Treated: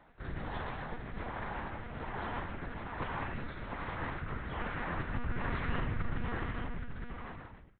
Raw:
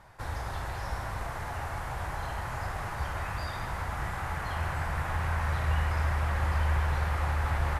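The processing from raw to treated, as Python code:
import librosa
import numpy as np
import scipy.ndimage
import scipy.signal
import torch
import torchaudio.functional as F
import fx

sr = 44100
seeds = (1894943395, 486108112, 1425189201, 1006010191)

y = fx.fade_out_tail(x, sr, length_s=2.02)
y = fx.rotary(y, sr, hz=1.2)
y = fx.lpc_monotone(y, sr, seeds[0], pitch_hz=240.0, order=8)
y = F.gain(torch.from_numpy(y), -3.0).numpy()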